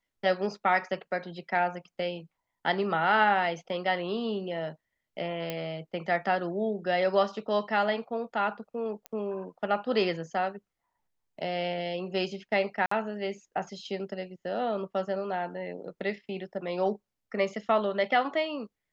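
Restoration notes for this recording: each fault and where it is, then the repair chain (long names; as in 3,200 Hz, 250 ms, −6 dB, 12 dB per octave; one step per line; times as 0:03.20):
0:05.50: click −17 dBFS
0:09.06: click −22 dBFS
0:12.86–0:12.91: drop-out 54 ms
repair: click removal
repair the gap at 0:12.86, 54 ms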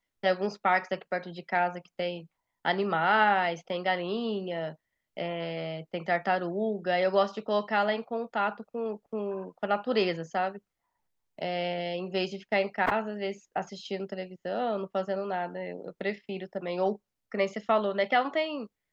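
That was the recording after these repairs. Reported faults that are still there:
0:05.50: click
0:09.06: click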